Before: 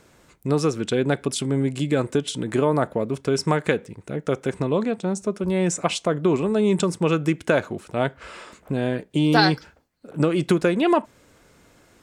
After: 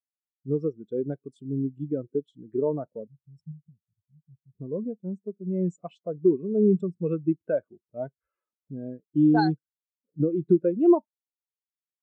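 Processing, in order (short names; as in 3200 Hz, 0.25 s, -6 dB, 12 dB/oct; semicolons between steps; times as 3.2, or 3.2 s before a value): 3.07–4.55 Chebyshev band-stop 120–8500 Hz, order 2; spectral expander 2.5:1; gain -3.5 dB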